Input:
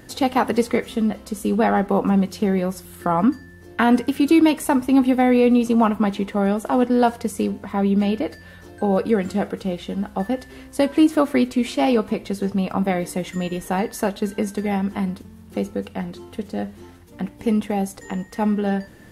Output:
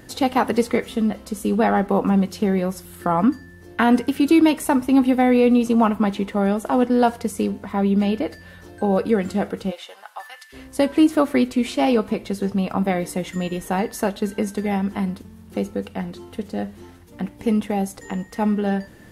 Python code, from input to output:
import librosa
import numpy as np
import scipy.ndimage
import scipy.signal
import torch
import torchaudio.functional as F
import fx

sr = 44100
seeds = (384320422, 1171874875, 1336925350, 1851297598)

y = fx.highpass(x, sr, hz=fx.line((9.7, 510.0), (10.52, 1400.0)), slope=24, at=(9.7, 10.52), fade=0.02)